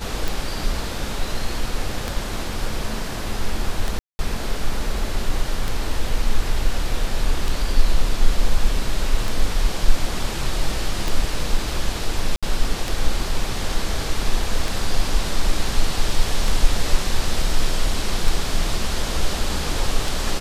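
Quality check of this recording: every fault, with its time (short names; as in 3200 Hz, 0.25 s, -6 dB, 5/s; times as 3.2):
tick 33 1/3 rpm
3.99–4.19 gap 0.2 s
12.36–12.43 gap 66 ms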